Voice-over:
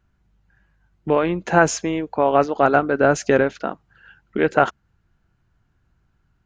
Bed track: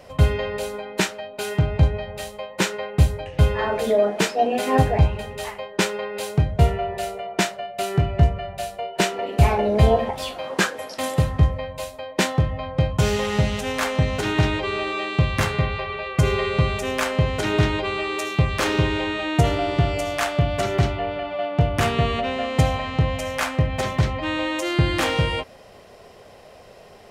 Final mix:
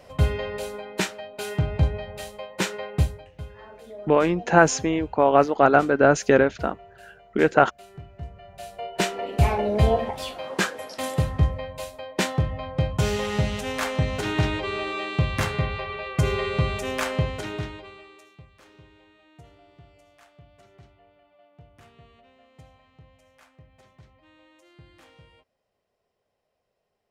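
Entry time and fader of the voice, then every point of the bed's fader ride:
3.00 s, -0.5 dB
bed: 2.98 s -4 dB
3.45 s -22 dB
8.19 s -22 dB
8.86 s -3.5 dB
17.18 s -3.5 dB
18.52 s -32 dB

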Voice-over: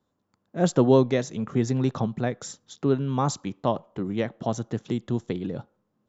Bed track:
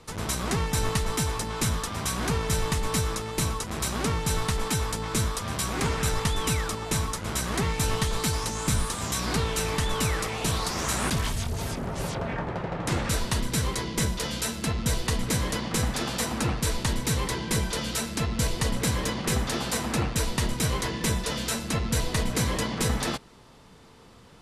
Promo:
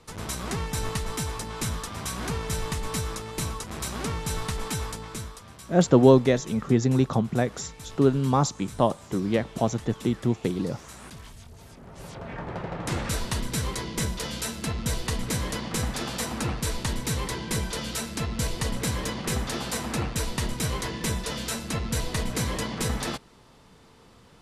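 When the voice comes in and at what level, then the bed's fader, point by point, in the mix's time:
5.15 s, +2.5 dB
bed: 4.85 s -3.5 dB
5.57 s -17 dB
11.69 s -17 dB
12.56 s -2 dB

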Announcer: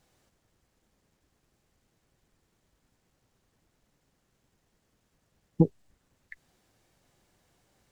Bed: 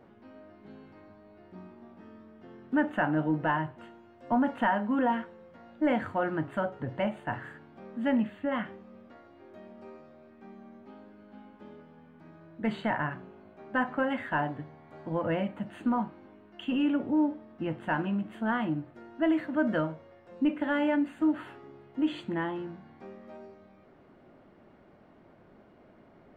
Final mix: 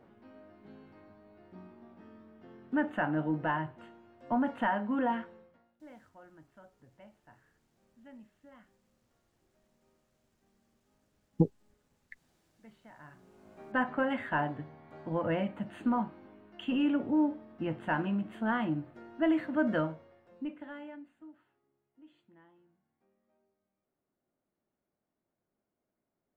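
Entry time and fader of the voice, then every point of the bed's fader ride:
5.80 s, -4.0 dB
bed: 5.37 s -3.5 dB
5.79 s -26 dB
12.92 s -26 dB
13.52 s -1.5 dB
19.86 s -1.5 dB
21.48 s -29.5 dB

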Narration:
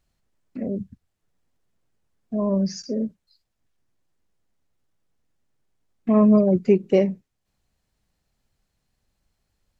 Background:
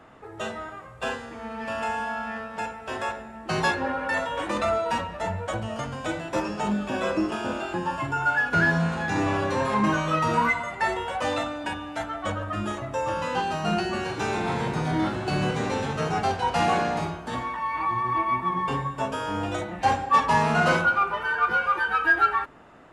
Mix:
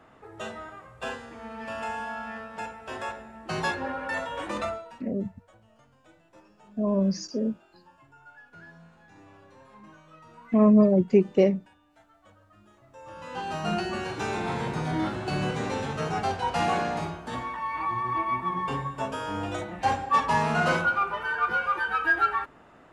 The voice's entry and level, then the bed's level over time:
4.45 s, -2.0 dB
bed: 4.64 s -4.5 dB
5.04 s -28 dB
12.71 s -28 dB
13.56 s -3 dB

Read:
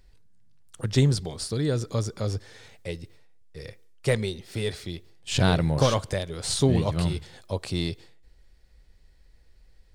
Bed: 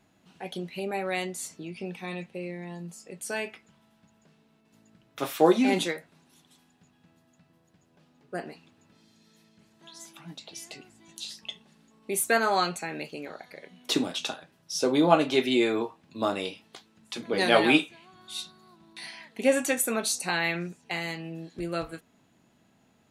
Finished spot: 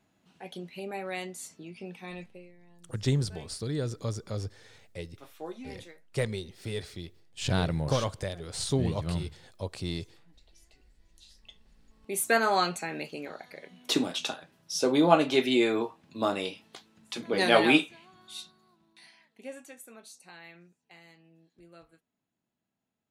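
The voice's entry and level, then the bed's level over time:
2.10 s, -6.0 dB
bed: 2.27 s -5.5 dB
2.53 s -20.5 dB
11.1 s -20.5 dB
12.32 s -0.5 dB
17.96 s -0.5 dB
19.71 s -22 dB

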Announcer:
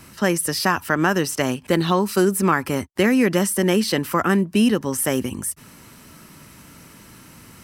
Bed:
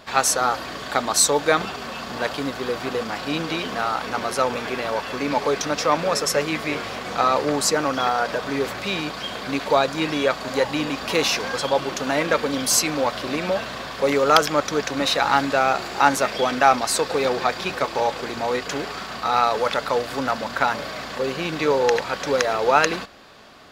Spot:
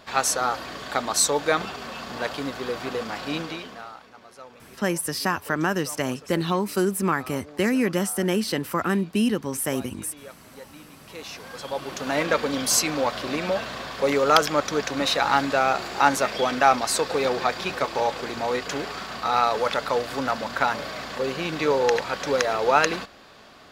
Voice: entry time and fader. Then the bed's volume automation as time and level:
4.60 s, -5.0 dB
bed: 3.37 s -3.5 dB
4.13 s -23 dB
10.92 s -23 dB
12.19 s -2 dB

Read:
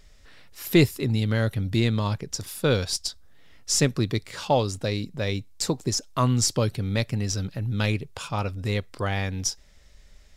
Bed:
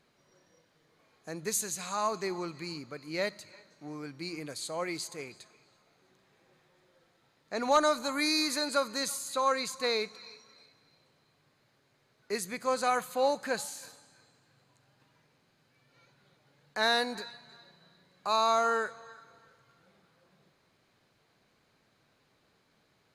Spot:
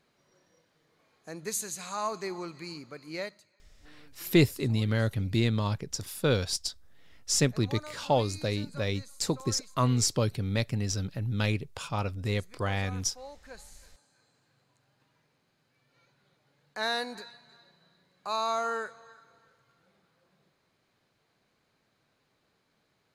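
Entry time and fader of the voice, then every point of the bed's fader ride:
3.60 s, -3.5 dB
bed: 3.15 s -1.5 dB
3.56 s -18.5 dB
13.3 s -18.5 dB
14.39 s -3.5 dB

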